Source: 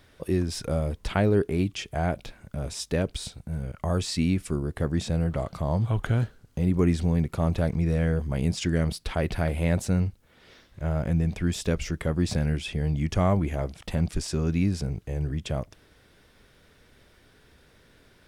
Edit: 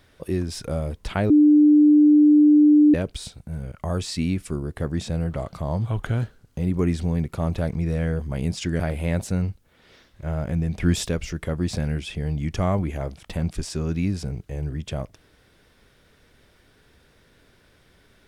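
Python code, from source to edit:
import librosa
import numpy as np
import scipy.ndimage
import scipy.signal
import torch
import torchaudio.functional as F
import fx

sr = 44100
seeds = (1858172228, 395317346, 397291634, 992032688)

y = fx.edit(x, sr, fx.bleep(start_s=1.3, length_s=1.64, hz=298.0, db=-10.5),
    fx.cut(start_s=8.8, length_s=0.58),
    fx.clip_gain(start_s=11.38, length_s=0.28, db=6.0), tone=tone)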